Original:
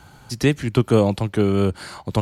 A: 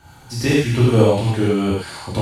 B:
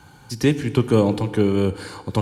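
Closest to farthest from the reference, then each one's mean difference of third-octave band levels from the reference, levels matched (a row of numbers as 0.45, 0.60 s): B, A; 2.0, 6.0 dB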